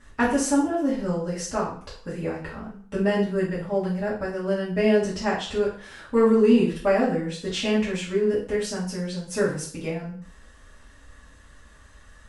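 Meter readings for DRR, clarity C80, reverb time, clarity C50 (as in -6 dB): -10.0 dB, 10.5 dB, 0.50 s, 6.0 dB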